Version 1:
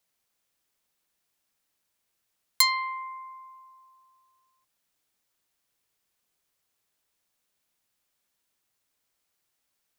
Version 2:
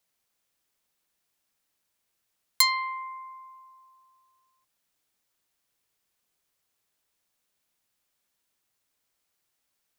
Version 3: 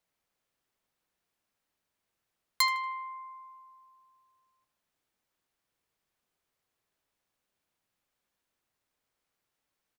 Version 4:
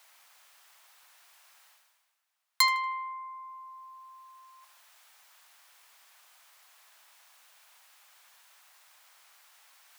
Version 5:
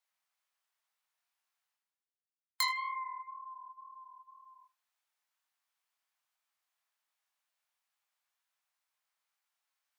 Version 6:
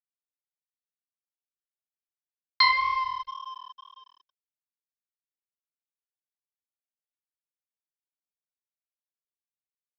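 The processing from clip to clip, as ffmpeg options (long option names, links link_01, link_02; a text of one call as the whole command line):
ffmpeg -i in.wav -af anull out.wav
ffmpeg -i in.wav -filter_complex "[0:a]highshelf=frequency=3200:gain=-9.5,asplit=2[link_01][link_02];[link_02]adelay=78,lowpass=frequency=3700:poles=1,volume=-11.5dB,asplit=2[link_03][link_04];[link_04]adelay=78,lowpass=frequency=3700:poles=1,volume=0.52,asplit=2[link_05][link_06];[link_06]adelay=78,lowpass=frequency=3700:poles=1,volume=0.52,asplit=2[link_07][link_08];[link_08]adelay=78,lowpass=frequency=3700:poles=1,volume=0.52,asplit=2[link_09][link_10];[link_10]adelay=78,lowpass=frequency=3700:poles=1,volume=0.52,asplit=2[link_11][link_12];[link_12]adelay=78,lowpass=frequency=3700:poles=1,volume=0.52[link_13];[link_01][link_03][link_05][link_07][link_09][link_11][link_13]amix=inputs=7:normalize=0" out.wav
ffmpeg -i in.wav -af "highpass=frequency=760:width=0.5412,highpass=frequency=760:width=1.3066,areverse,acompressor=mode=upward:threshold=-44dB:ratio=2.5,areverse,volume=3dB" out.wav
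ffmpeg -i in.wav -af "flanger=delay=18:depth=6.4:speed=2,afftdn=noise_reduction=24:noise_floor=-49,acompressor=threshold=-36dB:ratio=1.5" out.wav
ffmpeg -i in.wav -af "aecho=1:1:2.9:0.85,aresample=11025,aeval=exprs='sgn(val(0))*max(abs(val(0))-0.00531,0)':channel_layout=same,aresample=44100,volume=8dB" out.wav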